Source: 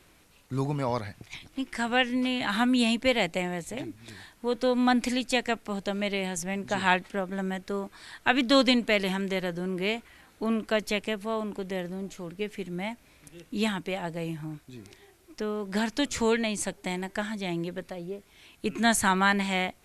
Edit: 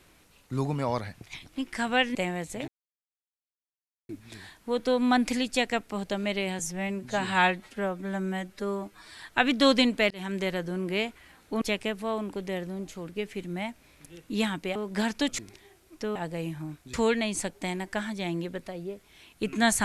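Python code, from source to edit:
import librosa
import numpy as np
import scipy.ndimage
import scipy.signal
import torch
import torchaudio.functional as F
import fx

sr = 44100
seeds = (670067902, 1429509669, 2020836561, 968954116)

y = fx.edit(x, sr, fx.cut(start_s=2.15, length_s=1.17),
    fx.insert_silence(at_s=3.85, length_s=1.41),
    fx.stretch_span(start_s=6.35, length_s=1.73, factor=1.5),
    fx.fade_in_span(start_s=9.0, length_s=0.26),
    fx.cut(start_s=10.51, length_s=0.33),
    fx.swap(start_s=13.98, length_s=0.78, other_s=15.53, other_length_s=0.63), tone=tone)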